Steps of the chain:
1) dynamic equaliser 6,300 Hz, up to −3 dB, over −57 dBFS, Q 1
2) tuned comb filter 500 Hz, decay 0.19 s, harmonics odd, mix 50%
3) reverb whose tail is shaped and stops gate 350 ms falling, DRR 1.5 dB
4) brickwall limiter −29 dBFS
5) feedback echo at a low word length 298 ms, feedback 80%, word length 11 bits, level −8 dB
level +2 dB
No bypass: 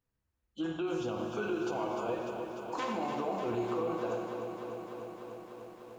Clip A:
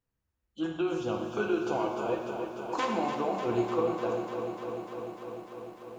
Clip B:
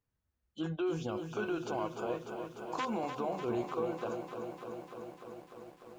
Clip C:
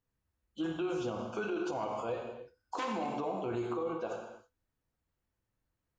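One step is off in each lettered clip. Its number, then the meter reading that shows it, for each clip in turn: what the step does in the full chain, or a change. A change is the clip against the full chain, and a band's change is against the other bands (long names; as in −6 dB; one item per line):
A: 4, average gain reduction 2.5 dB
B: 3, 125 Hz band +3.5 dB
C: 5, change in crest factor −2.5 dB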